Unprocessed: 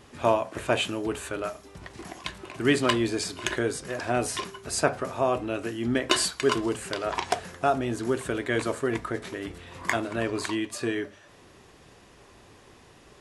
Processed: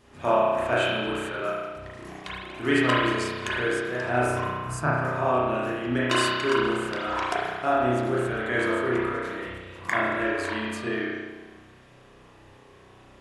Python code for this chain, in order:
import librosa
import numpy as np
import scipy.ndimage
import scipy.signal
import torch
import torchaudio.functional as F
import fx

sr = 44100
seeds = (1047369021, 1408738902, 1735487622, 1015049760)

y = fx.graphic_eq(x, sr, hz=(125, 250, 500, 1000, 2000, 4000), db=(11, 3, -9, 4, -3, -12), at=(4.26, 4.94))
y = fx.rev_spring(y, sr, rt60_s=1.5, pass_ms=(32,), chirp_ms=50, drr_db=-7.5)
y = fx.dynamic_eq(y, sr, hz=1400.0, q=1.1, threshold_db=-36.0, ratio=4.0, max_db=5)
y = F.gain(torch.from_numpy(y), -7.0).numpy()